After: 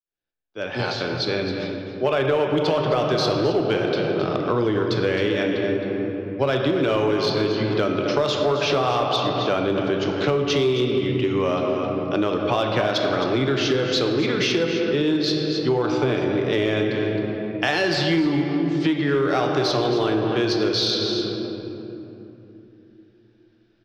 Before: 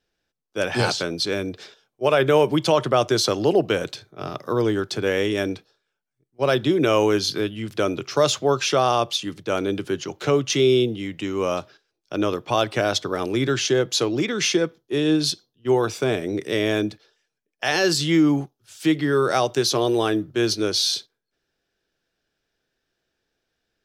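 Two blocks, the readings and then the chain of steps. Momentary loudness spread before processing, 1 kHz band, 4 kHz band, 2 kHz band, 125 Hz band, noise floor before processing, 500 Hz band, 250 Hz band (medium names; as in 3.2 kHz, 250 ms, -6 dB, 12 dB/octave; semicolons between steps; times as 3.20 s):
9 LU, 0.0 dB, -0.5 dB, +0.5 dB, +2.0 dB, -81 dBFS, +0.5 dB, +1.0 dB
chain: fade-in on the opening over 2.48 s; low-pass 4.7 kHz 24 dB/octave; on a send: delay 265 ms -11 dB; on the sum: simulated room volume 140 m³, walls hard, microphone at 0.31 m; in parallel at -3.5 dB: hard clipper -14.5 dBFS, distortion -13 dB; on the sum: compression 5:1, threshold -20 dBFS, peak gain reduction 11.5 dB; trim +1.5 dB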